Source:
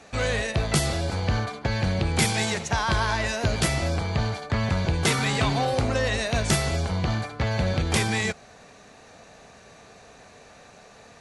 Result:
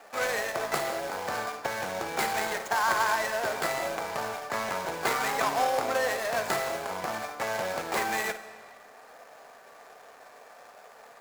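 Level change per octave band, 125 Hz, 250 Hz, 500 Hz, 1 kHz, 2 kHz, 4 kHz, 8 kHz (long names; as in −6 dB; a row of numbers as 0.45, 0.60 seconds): −24.0, −13.0, −1.5, +1.5, −2.0, −7.5, −6.0 decibels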